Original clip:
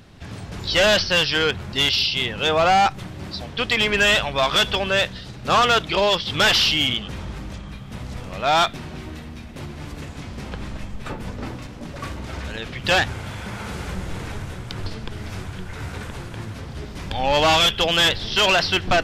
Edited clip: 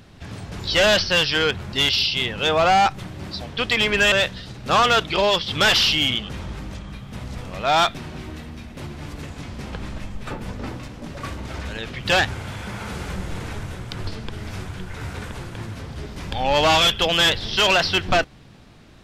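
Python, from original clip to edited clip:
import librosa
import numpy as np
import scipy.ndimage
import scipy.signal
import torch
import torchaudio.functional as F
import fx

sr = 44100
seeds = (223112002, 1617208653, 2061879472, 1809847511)

y = fx.edit(x, sr, fx.cut(start_s=4.12, length_s=0.79), tone=tone)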